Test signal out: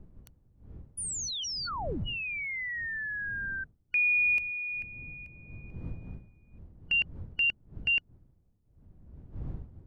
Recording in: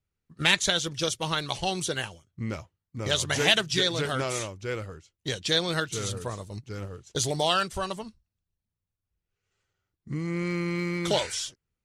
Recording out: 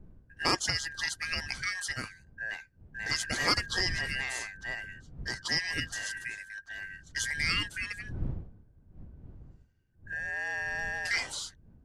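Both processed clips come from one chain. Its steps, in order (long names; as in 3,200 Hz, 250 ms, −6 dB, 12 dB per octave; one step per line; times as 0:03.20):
band-splitting scrambler in four parts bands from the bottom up 2143
wind on the microphone 110 Hz −40 dBFS
level −5.5 dB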